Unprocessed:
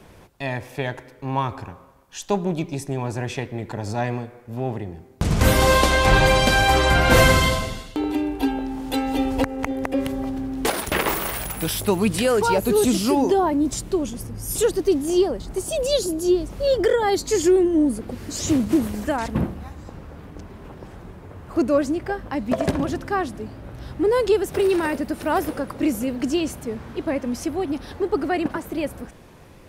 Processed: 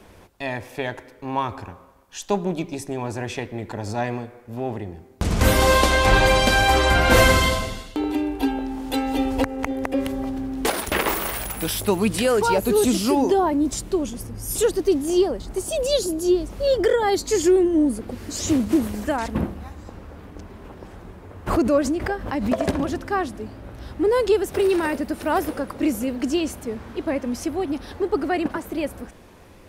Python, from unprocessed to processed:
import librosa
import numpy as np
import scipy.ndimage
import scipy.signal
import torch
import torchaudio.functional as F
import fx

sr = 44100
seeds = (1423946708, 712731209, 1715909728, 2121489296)

y = fx.peak_eq(x, sr, hz=140.0, db=-13.0, octaves=0.25)
y = fx.pre_swell(y, sr, db_per_s=69.0, at=(21.46, 22.5), fade=0.02)